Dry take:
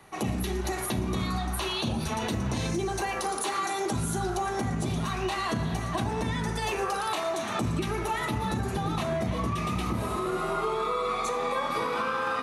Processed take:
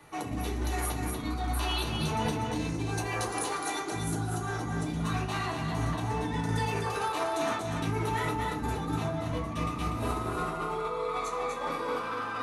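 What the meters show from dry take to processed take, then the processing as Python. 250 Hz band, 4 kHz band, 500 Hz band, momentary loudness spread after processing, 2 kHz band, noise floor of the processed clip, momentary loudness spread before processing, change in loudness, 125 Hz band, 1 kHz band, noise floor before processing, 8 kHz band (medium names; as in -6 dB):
-2.5 dB, -3.0 dB, -3.5 dB, 3 LU, -2.5 dB, -36 dBFS, 2 LU, -2.5 dB, -1.0 dB, -2.5 dB, -32 dBFS, -2.5 dB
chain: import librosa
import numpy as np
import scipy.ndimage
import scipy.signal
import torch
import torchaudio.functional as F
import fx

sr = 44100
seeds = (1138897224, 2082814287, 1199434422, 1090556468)

y = fx.over_compress(x, sr, threshold_db=-31.0, ratio=-0.5)
y = y + 10.0 ** (-4.5 / 20.0) * np.pad(y, (int(244 * sr / 1000.0), 0))[:len(y)]
y = fx.rev_fdn(y, sr, rt60_s=0.42, lf_ratio=1.05, hf_ratio=0.55, size_ms=20.0, drr_db=-0.5)
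y = y * 10.0 ** (-5.5 / 20.0)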